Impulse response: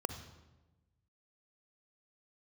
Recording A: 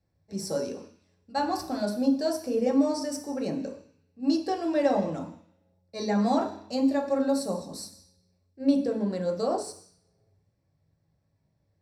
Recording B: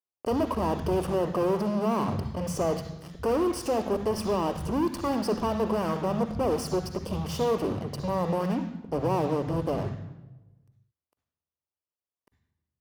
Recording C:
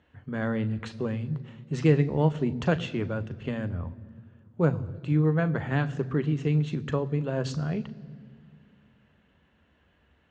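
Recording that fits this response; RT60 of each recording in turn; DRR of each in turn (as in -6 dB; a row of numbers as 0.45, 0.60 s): B; not exponential, 1.1 s, 2.2 s; 0.0, 10.0, 12.5 dB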